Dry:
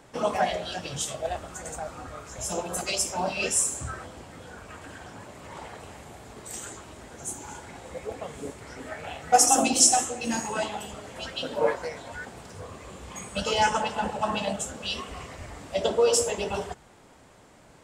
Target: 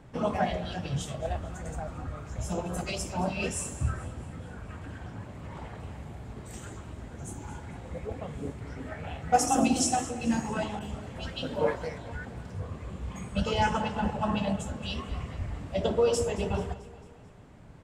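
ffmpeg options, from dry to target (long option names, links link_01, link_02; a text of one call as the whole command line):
ffmpeg -i in.wav -filter_complex "[0:a]bass=frequency=250:gain=13,treble=frequency=4000:gain=-8,aecho=1:1:221|442|663|884|1105:0.133|0.0707|0.0375|0.0199|0.0105,asettb=1/sr,asplit=3[link_01][link_02][link_03];[link_01]atrim=end=10.794[link_04];[link_02]atrim=start=10.79:end=11.98,asetpts=PTS-STARTPTS,afade=type=in:duration=0.004:curve=qsin,afade=type=out:start_time=1.186:duration=0.004:curve=qsin,adynamicequalizer=threshold=0.00708:dfrequency=3300:dqfactor=0.7:tfrequency=3300:tqfactor=0.7:attack=5:release=100:ratio=0.375:range=2:mode=boostabove:tftype=highshelf[link_05];[link_03]atrim=start=11.976[link_06];[link_04][link_05]acrossfade=duration=0.004:curve1=hsin:curve2=qsin[link_07];[link_07][link_06]acrossfade=duration=0.004:curve1=qsin:curve2=hsin,volume=-4dB" out.wav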